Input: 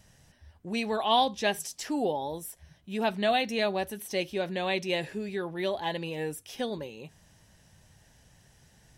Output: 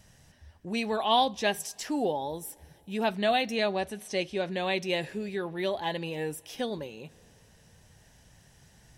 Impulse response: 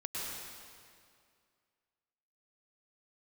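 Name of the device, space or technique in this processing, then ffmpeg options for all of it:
ducked reverb: -filter_complex "[0:a]asplit=3[s0][s1][s2];[1:a]atrim=start_sample=2205[s3];[s1][s3]afir=irnorm=-1:irlink=0[s4];[s2]apad=whole_len=395808[s5];[s4][s5]sidechaincompress=threshold=0.00501:ratio=5:attack=16:release=1180,volume=0.251[s6];[s0][s6]amix=inputs=2:normalize=0,asettb=1/sr,asplit=3[s7][s8][s9];[s7]atrim=end=3.564[s10];[s8]atrim=start=3.56:end=4.52,asetpts=PTS-STARTPTS,afade=t=in:d=0.004:c=qsin,afade=t=out:st=0.956:d=0.004:c=qsin,lowpass=f=9900:w=0.5412,lowpass=f=9900:w=1.3066[s11];[s9]atrim=start=4.516[s12];[s10][s11]acrossfade=d=0.004:c1=hsin:c2=qsin[s13];[s13][s12]acrossfade=d=0.004:c1=qsin:c2=hsin"

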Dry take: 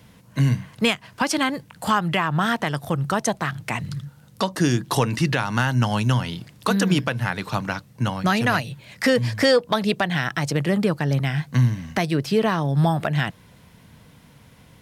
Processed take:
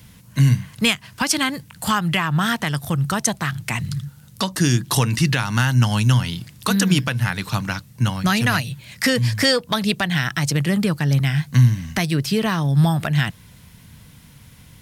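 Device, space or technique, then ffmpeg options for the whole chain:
smiley-face EQ: -af "lowshelf=f=130:g=5,equalizer=f=540:t=o:w=2.2:g=-8,highshelf=f=6100:g=7,volume=1.5"

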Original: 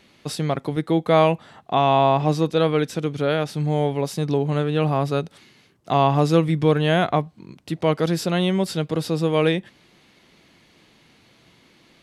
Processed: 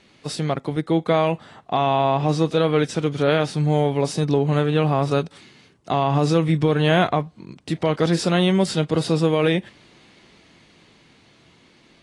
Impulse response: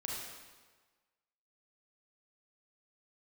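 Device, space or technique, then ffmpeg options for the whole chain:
low-bitrate web radio: -af "dynaudnorm=f=220:g=17:m=1.68,alimiter=limit=0.376:level=0:latency=1:release=92" -ar 22050 -c:a aac -b:a 32k

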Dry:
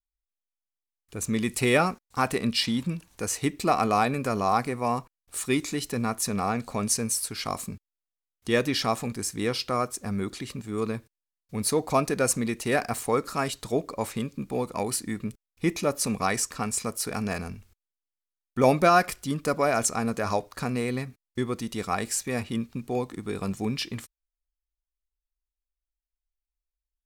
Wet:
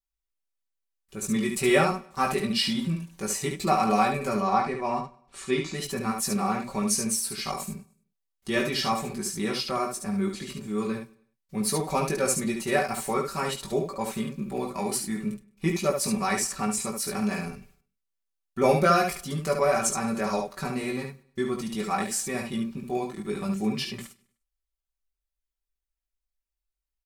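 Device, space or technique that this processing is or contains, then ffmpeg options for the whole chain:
slapback doubling: -filter_complex "[0:a]asettb=1/sr,asplit=3[s0][s1][s2];[s0]atrim=end=4.404[s3];[s1]atrim=start=4.4:end=5.74,asetpts=PTS-STARTPTS,afade=t=in:d=0.004:c=qsin,afade=t=out:st=1.336:d=0.004:c=qsin,lowpass=5200[s4];[s2]atrim=start=5.736[s5];[s3][s4]acrossfade=d=0.004:c1=hsin:c2=qsin[s6];[s6][s5]acrossfade=d=0.004:c1=qsin:c2=hsin,aecho=1:1:5.2:0.83,aecho=1:1:101|202|303:0.0708|0.029|0.0119,asplit=3[s7][s8][s9];[s8]adelay=19,volume=0.631[s10];[s9]adelay=71,volume=0.562[s11];[s7][s10][s11]amix=inputs=3:normalize=0,volume=0.596"

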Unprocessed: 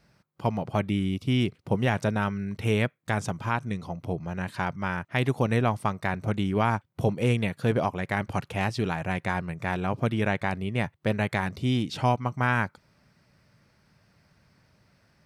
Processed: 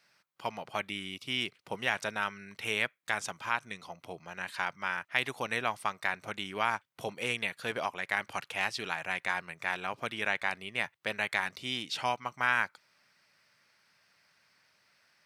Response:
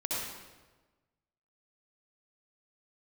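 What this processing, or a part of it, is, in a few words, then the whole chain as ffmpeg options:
filter by subtraction: -filter_complex "[0:a]asplit=2[s0][s1];[s1]lowpass=2300,volume=-1[s2];[s0][s2]amix=inputs=2:normalize=0"

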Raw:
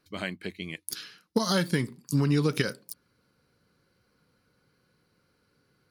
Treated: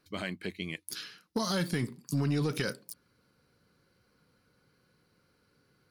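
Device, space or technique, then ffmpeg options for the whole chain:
soft clipper into limiter: -af "asoftclip=type=tanh:threshold=0.158,alimiter=limit=0.075:level=0:latency=1:release=19"

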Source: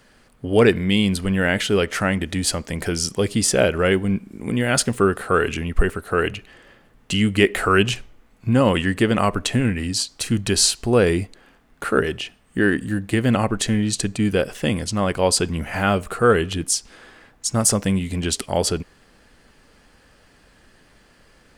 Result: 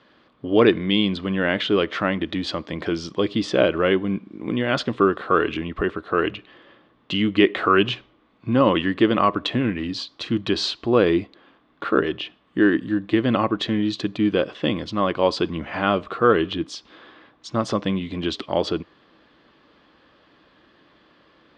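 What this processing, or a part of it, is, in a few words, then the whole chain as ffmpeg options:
guitar cabinet: -af "highpass=91,equalizer=f=97:t=q:w=4:g=-5,equalizer=f=320:t=q:w=4:g=10,equalizer=f=580:t=q:w=4:g=4,equalizer=f=1100:t=q:w=4:g=9,equalizer=f=3500:t=q:w=4:g=8,lowpass=f=4300:w=0.5412,lowpass=f=4300:w=1.3066,volume=0.631"

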